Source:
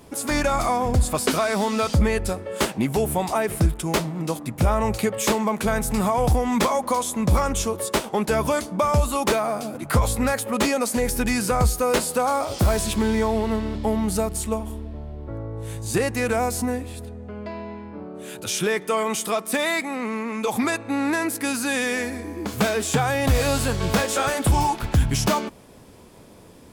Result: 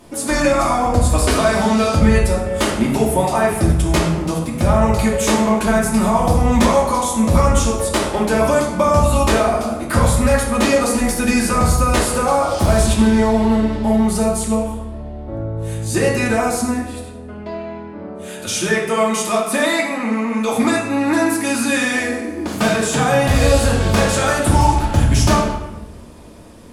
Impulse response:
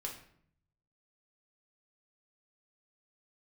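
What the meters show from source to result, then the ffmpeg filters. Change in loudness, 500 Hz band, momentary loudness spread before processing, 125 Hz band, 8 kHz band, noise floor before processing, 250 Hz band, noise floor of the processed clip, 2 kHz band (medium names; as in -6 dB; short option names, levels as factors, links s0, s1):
+6.5 dB, +6.5 dB, 10 LU, +6.5 dB, +5.0 dB, -43 dBFS, +8.0 dB, -32 dBFS, +6.0 dB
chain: -filter_complex "[1:a]atrim=start_sample=2205,asetrate=23814,aresample=44100[s0];[0:a][s0]afir=irnorm=-1:irlink=0,volume=1.33"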